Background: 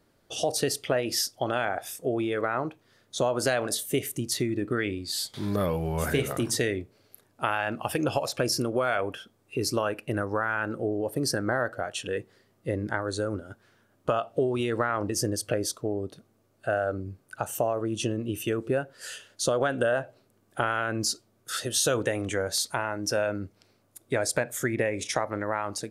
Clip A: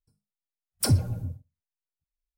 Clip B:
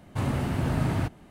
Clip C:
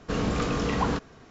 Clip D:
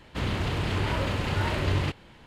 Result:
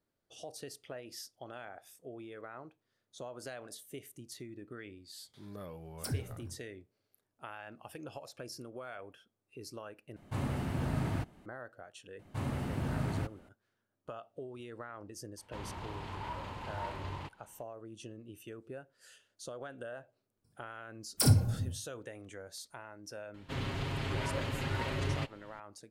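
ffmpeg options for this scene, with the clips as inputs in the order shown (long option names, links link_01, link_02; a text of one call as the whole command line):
ffmpeg -i bed.wav -i cue0.wav -i cue1.wav -i cue2.wav -i cue3.wav -filter_complex "[1:a]asplit=2[link_01][link_02];[2:a]asplit=2[link_03][link_04];[4:a]asplit=2[link_05][link_06];[0:a]volume=-19dB[link_07];[link_05]equalizer=frequency=930:width_type=o:width=0.58:gain=12.5[link_08];[link_02]aecho=1:1:28|59:0.501|0.531[link_09];[link_06]aecho=1:1:7.4:0.63[link_10];[link_07]asplit=2[link_11][link_12];[link_11]atrim=end=10.164[link_13];[link_03]atrim=end=1.3,asetpts=PTS-STARTPTS,volume=-7.5dB[link_14];[link_12]atrim=start=11.456[link_15];[link_01]atrim=end=2.37,asetpts=PTS-STARTPTS,volume=-14.5dB,afade=type=in:duration=0.004:curve=hsin,afade=type=out:start_time=2.366:duration=0.004:curve=hsin,adelay=229761S[link_16];[link_04]atrim=end=1.3,asetpts=PTS-STARTPTS,volume=-8.5dB,afade=type=in:duration=0.004:curve=hsin,afade=type=out:start_time=1.296:duration=0.004:curve=hsin,adelay=12190[link_17];[link_08]atrim=end=2.26,asetpts=PTS-STARTPTS,volume=-17dB,afade=type=in:duration=0.004:curve=hsin,afade=type=out:start_time=2.256:duration=0.004:curve=hsin,adelay=15370[link_18];[link_09]atrim=end=2.37,asetpts=PTS-STARTPTS,volume=-3.5dB,afade=type=in:duration=0.004:curve=hsin,afade=type=out:start_time=2.366:duration=0.004:curve=hsin,adelay=20370[link_19];[link_10]atrim=end=2.26,asetpts=PTS-STARTPTS,volume=-9dB,afade=type=in:duration=0.004:curve=hsin,afade=type=out:start_time=2.256:duration=0.004:curve=hsin,adelay=23340[link_20];[link_13][link_14]acrossfade=duration=0.004:curve1=hsin:curve2=hsin[link_21];[link_21][link_15]acrossfade=duration=0.004:curve1=hsin:curve2=hsin[link_22];[link_22][link_16][link_17][link_18][link_19][link_20]amix=inputs=6:normalize=0" out.wav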